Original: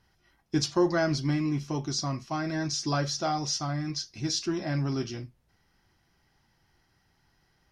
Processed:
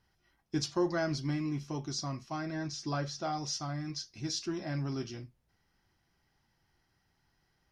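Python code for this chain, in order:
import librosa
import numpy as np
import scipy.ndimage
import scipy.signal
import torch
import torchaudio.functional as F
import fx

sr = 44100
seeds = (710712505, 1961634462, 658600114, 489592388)

y = fx.high_shelf(x, sr, hz=5900.0, db=-9.5, at=(2.45, 3.33))
y = y * 10.0 ** (-6.0 / 20.0)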